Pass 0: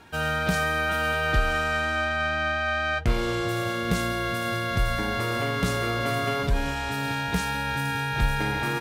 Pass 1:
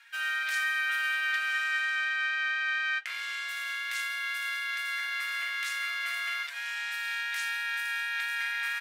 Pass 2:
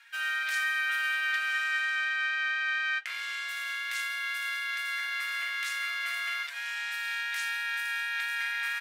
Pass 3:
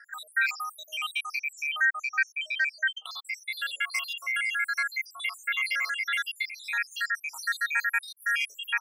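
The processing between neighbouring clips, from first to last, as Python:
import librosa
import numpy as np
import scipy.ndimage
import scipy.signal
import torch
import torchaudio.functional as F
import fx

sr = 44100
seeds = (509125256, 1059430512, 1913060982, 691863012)

y1 = fx.ladder_highpass(x, sr, hz=1600.0, resonance_pct=50)
y1 = y1 * 10.0 ** (4.5 / 20.0)
y2 = y1
y3 = fx.spec_dropout(y2, sr, seeds[0], share_pct=82)
y3 = fx.hum_notches(y3, sr, base_hz=50, count=7)
y3 = y3 * 10.0 ** (9.0 / 20.0)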